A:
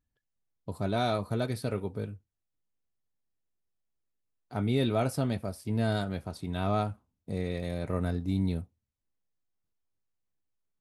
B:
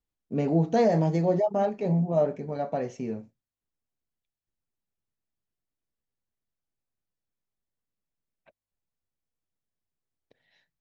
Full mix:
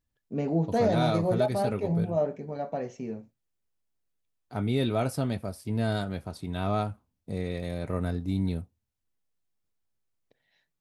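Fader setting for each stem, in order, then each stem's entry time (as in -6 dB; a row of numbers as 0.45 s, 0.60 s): +0.5 dB, -3.0 dB; 0.00 s, 0.00 s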